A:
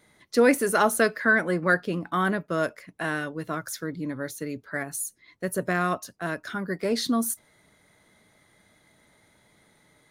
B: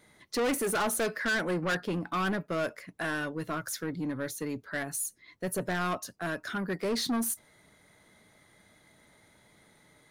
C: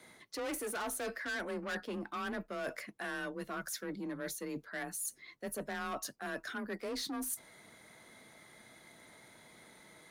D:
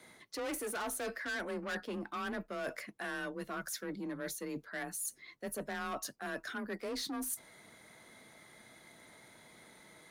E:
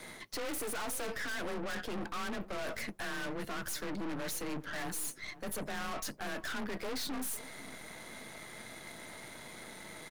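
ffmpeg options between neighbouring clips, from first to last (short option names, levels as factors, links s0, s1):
-af "asoftclip=type=tanh:threshold=0.0531"
-af "lowshelf=f=210:g=-5.5,areverse,acompressor=threshold=0.00794:ratio=6,areverse,afreqshift=27,volume=1.58"
-af anull
-filter_complex "[0:a]acrossover=split=100[s0][s1];[s1]alimiter=level_in=2.99:limit=0.0631:level=0:latency=1:release=27,volume=0.335[s2];[s0][s2]amix=inputs=2:normalize=0,aeval=exprs='(tanh(355*val(0)+0.8)-tanh(0.8))/355':c=same,asplit=2[s3][s4];[s4]adelay=506,lowpass=f=1300:p=1,volume=0.158,asplit=2[s5][s6];[s6]adelay=506,lowpass=f=1300:p=1,volume=0.16[s7];[s3][s5][s7]amix=inputs=3:normalize=0,volume=5.01"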